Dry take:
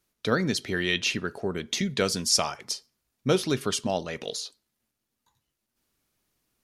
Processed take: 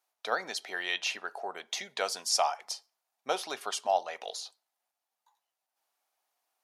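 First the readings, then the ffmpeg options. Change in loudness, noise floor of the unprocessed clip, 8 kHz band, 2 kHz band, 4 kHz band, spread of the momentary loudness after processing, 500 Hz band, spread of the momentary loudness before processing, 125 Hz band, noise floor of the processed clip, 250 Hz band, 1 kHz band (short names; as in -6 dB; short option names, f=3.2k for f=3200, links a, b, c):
-5.5 dB, -82 dBFS, -6.0 dB, -4.5 dB, -5.5 dB, 12 LU, -6.5 dB, 11 LU, under -30 dB, under -85 dBFS, -22.0 dB, +2.5 dB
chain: -af "highpass=f=760:t=q:w=4.4,volume=-6dB"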